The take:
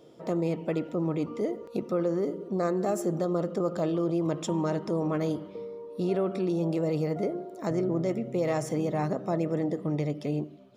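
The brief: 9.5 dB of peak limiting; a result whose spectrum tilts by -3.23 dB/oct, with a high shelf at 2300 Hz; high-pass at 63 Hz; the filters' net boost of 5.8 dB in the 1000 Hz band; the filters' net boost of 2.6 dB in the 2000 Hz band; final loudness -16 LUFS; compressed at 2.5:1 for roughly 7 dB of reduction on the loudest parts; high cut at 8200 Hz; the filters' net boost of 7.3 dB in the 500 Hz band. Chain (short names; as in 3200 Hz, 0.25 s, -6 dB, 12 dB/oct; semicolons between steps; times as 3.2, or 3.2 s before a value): HPF 63 Hz; LPF 8200 Hz; bell 500 Hz +8 dB; bell 1000 Hz +4.5 dB; bell 2000 Hz +3.5 dB; high shelf 2300 Hz -4.5 dB; compressor 2.5:1, threshold -28 dBFS; gain +18 dB; limiter -8 dBFS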